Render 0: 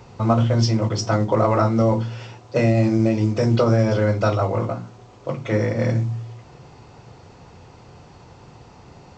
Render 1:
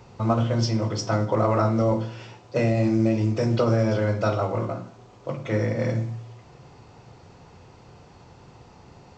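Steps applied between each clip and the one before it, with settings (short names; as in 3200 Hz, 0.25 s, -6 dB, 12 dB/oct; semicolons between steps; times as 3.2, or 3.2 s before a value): reverb RT60 0.60 s, pre-delay 37 ms, DRR 10 dB; gain -4 dB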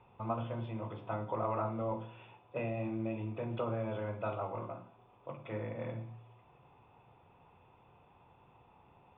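rippled Chebyshev low-pass 3600 Hz, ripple 9 dB; gain -8 dB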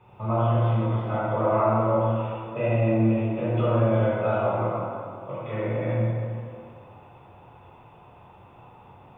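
plate-style reverb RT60 2.2 s, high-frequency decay 0.65×, DRR -9.5 dB; gain +2.5 dB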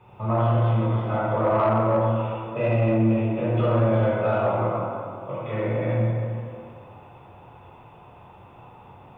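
soft clip -14.5 dBFS, distortion -21 dB; gain +2.5 dB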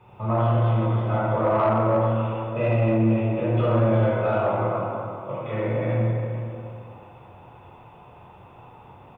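outdoor echo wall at 75 m, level -12 dB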